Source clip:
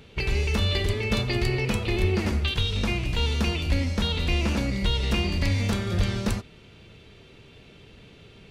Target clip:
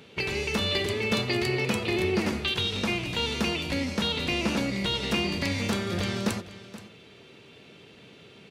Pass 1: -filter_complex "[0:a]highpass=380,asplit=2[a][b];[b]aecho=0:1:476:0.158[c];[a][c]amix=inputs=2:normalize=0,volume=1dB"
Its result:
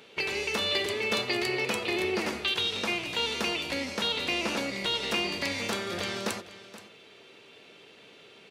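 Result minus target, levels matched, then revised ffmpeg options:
125 Hz band -11.0 dB
-filter_complex "[0:a]highpass=170,asplit=2[a][b];[b]aecho=0:1:476:0.158[c];[a][c]amix=inputs=2:normalize=0,volume=1dB"

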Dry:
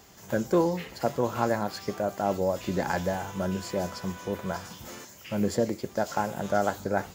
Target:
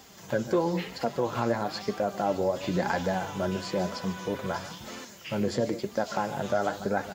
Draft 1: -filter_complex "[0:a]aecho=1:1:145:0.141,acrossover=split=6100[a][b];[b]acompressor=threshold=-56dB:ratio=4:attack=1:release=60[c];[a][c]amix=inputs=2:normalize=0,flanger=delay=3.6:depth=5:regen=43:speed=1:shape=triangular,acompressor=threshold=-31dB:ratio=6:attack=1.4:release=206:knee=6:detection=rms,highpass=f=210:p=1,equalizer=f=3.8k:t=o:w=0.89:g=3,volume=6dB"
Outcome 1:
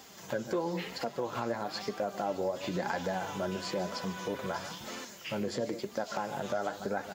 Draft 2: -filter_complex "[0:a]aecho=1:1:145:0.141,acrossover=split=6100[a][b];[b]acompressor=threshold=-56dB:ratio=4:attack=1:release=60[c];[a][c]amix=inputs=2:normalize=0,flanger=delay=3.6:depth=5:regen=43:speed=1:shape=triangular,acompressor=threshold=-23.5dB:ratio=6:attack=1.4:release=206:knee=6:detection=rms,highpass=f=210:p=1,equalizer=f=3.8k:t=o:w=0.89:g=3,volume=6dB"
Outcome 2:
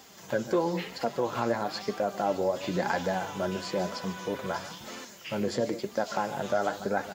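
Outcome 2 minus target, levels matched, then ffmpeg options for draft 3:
125 Hz band -3.0 dB
-filter_complex "[0:a]aecho=1:1:145:0.141,acrossover=split=6100[a][b];[b]acompressor=threshold=-56dB:ratio=4:attack=1:release=60[c];[a][c]amix=inputs=2:normalize=0,flanger=delay=3.6:depth=5:regen=43:speed=1:shape=triangular,acompressor=threshold=-23.5dB:ratio=6:attack=1.4:release=206:knee=6:detection=rms,highpass=f=64:p=1,equalizer=f=3.8k:t=o:w=0.89:g=3,volume=6dB"

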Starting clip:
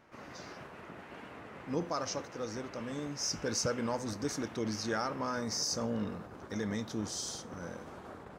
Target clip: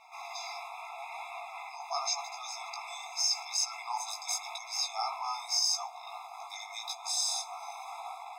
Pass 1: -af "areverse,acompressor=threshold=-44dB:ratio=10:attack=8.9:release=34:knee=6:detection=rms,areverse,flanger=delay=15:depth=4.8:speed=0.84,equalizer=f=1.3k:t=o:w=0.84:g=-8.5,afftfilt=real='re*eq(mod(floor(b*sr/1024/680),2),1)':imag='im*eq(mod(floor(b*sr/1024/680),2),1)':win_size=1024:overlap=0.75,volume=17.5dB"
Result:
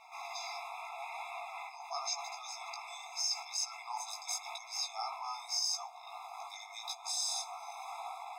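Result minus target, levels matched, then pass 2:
compressor: peak gain reduction +5.5 dB
-af "areverse,acompressor=threshold=-38dB:ratio=10:attack=8.9:release=34:knee=6:detection=rms,areverse,flanger=delay=15:depth=4.8:speed=0.84,equalizer=f=1.3k:t=o:w=0.84:g=-8.5,afftfilt=real='re*eq(mod(floor(b*sr/1024/680),2),1)':imag='im*eq(mod(floor(b*sr/1024/680),2),1)':win_size=1024:overlap=0.75,volume=17.5dB"

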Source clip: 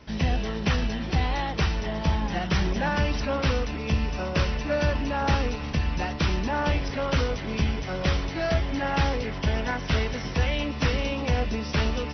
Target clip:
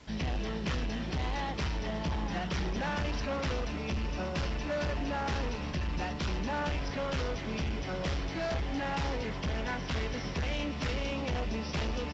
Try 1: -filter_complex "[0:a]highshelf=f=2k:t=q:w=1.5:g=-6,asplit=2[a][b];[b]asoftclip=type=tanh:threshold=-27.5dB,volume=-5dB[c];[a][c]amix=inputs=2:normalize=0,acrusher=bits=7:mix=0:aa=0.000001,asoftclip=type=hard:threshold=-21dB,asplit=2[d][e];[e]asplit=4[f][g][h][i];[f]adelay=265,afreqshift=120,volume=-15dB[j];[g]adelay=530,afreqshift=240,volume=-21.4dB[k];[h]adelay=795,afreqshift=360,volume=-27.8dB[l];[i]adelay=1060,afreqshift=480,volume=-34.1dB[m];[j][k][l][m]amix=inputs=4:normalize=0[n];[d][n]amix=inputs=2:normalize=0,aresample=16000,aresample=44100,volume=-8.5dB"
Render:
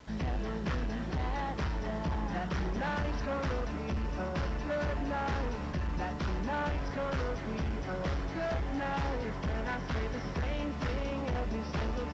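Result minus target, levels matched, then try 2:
4000 Hz band -6.0 dB; soft clip: distortion +8 dB
-filter_complex "[0:a]asplit=2[a][b];[b]asoftclip=type=tanh:threshold=-19dB,volume=-5dB[c];[a][c]amix=inputs=2:normalize=0,acrusher=bits=7:mix=0:aa=0.000001,asoftclip=type=hard:threshold=-21dB,asplit=2[d][e];[e]asplit=4[f][g][h][i];[f]adelay=265,afreqshift=120,volume=-15dB[j];[g]adelay=530,afreqshift=240,volume=-21.4dB[k];[h]adelay=795,afreqshift=360,volume=-27.8dB[l];[i]adelay=1060,afreqshift=480,volume=-34.1dB[m];[j][k][l][m]amix=inputs=4:normalize=0[n];[d][n]amix=inputs=2:normalize=0,aresample=16000,aresample=44100,volume=-8.5dB"

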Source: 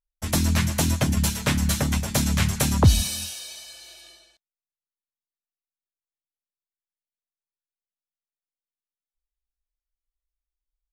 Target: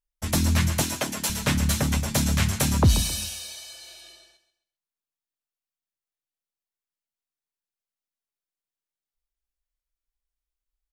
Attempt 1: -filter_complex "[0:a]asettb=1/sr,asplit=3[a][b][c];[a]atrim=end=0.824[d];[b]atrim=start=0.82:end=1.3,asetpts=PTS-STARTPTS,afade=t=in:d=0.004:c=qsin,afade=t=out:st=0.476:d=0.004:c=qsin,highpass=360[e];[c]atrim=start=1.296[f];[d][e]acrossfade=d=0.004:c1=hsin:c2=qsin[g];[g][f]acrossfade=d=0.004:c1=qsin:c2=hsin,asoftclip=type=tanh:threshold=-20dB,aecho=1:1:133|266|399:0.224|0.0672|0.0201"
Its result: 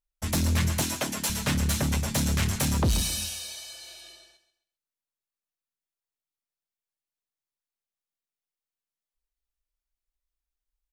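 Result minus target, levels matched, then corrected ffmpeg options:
soft clip: distortion +10 dB
-filter_complex "[0:a]asettb=1/sr,asplit=3[a][b][c];[a]atrim=end=0.824[d];[b]atrim=start=0.82:end=1.3,asetpts=PTS-STARTPTS,afade=t=in:d=0.004:c=qsin,afade=t=out:st=0.476:d=0.004:c=qsin,highpass=360[e];[c]atrim=start=1.296[f];[d][e]acrossfade=d=0.004:c1=hsin:c2=qsin[g];[g][f]acrossfade=d=0.004:c1=qsin:c2=hsin,asoftclip=type=tanh:threshold=-10dB,aecho=1:1:133|266|399:0.224|0.0672|0.0201"

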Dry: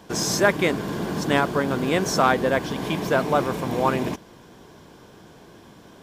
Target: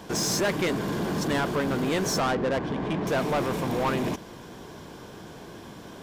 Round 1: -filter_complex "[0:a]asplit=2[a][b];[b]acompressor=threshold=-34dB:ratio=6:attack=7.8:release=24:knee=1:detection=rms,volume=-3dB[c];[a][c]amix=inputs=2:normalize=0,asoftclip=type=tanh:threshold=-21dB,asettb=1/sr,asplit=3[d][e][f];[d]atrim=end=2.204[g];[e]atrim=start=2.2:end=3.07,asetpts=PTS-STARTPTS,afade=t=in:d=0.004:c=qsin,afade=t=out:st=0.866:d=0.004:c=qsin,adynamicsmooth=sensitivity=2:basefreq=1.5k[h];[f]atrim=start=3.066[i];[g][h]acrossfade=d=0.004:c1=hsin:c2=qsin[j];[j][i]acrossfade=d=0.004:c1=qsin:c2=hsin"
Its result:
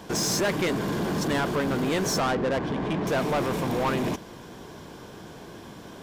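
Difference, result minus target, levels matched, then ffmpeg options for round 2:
compressor: peak gain reduction -8.5 dB
-filter_complex "[0:a]asplit=2[a][b];[b]acompressor=threshold=-44dB:ratio=6:attack=7.8:release=24:knee=1:detection=rms,volume=-3dB[c];[a][c]amix=inputs=2:normalize=0,asoftclip=type=tanh:threshold=-21dB,asettb=1/sr,asplit=3[d][e][f];[d]atrim=end=2.204[g];[e]atrim=start=2.2:end=3.07,asetpts=PTS-STARTPTS,afade=t=in:d=0.004:c=qsin,afade=t=out:st=0.866:d=0.004:c=qsin,adynamicsmooth=sensitivity=2:basefreq=1.5k[h];[f]atrim=start=3.066[i];[g][h]acrossfade=d=0.004:c1=hsin:c2=qsin[j];[j][i]acrossfade=d=0.004:c1=qsin:c2=hsin"

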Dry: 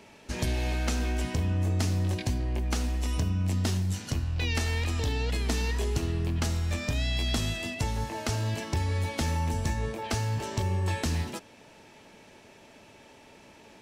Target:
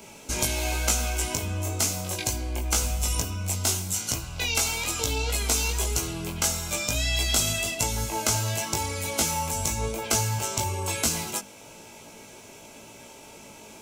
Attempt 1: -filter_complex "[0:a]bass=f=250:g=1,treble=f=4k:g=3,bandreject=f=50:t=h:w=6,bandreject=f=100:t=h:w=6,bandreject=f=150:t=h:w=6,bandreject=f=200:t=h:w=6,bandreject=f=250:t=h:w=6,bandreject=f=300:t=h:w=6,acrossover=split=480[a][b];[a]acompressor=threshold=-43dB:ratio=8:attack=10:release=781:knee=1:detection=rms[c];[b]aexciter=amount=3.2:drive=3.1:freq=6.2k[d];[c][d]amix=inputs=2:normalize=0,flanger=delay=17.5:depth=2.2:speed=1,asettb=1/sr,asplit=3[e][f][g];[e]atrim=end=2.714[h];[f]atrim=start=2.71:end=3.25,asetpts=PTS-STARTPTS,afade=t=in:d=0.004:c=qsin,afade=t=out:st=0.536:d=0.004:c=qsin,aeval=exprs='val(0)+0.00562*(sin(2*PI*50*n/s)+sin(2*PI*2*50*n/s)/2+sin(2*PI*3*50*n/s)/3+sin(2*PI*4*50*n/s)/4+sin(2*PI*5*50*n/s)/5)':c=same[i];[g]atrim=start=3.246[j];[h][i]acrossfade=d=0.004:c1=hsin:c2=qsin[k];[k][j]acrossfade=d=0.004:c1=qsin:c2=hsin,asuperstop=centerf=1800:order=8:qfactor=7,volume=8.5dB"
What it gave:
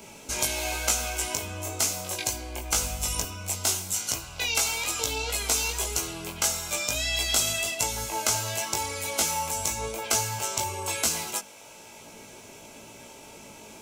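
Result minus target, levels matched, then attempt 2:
compressor: peak gain reduction +9 dB
-filter_complex "[0:a]bass=f=250:g=1,treble=f=4k:g=3,bandreject=f=50:t=h:w=6,bandreject=f=100:t=h:w=6,bandreject=f=150:t=h:w=6,bandreject=f=200:t=h:w=6,bandreject=f=250:t=h:w=6,bandreject=f=300:t=h:w=6,acrossover=split=480[a][b];[a]acompressor=threshold=-33dB:ratio=8:attack=10:release=781:knee=1:detection=rms[c];[b]aexciter=amount=3.2:drive=3.1:freq=6.2k[d];[c][d]amix=inputs=2:normalize=0,flanger=delay=17.5:depth=2.2:speed=1,asettb=1/sr,asplit=3[e][f][g];[e]atrim=end=2.714[h];[f]atrim=start=2.71:end=3.25,asetpts=PTS-STARTPTS,afade=t=in:d=0.004:c=qsin,afade=t=out:st=0.536:d=0.004:c=qsin,aeval=exprs='val(0)+0.00562*(sin(2*PI*50*n/s)+sin(2*PI*2*50*n/s)/2+sin(2*PI*3*50*n/s)/3+sin(2*PI*4*50*n/s)/4+sin(2*PI*5*50*n/s)/5)':c=same[i];[g]atrim=start=3.246[j];[h][i]acrossfade=d=0.004:c1=hsin:c2=qsin[k];[k][j]acrossfade=d=0.004:c1=qsin:c2=hsin,asuperstop=centerf=1800:order=8:qfactor=7,volume=8.5dB"

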